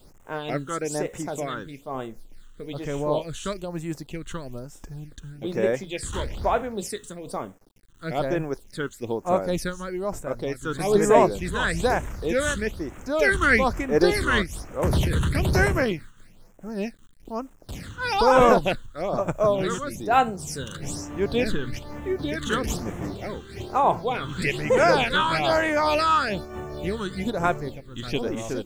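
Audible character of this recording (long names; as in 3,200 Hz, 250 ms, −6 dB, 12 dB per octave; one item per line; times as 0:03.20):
a quantiser's noise floor 10 bits, dither none
phaser sweep stages 8, 1.1 Hz, lowest notch 660–4,400 Hz
amplitude modulation by smooth noise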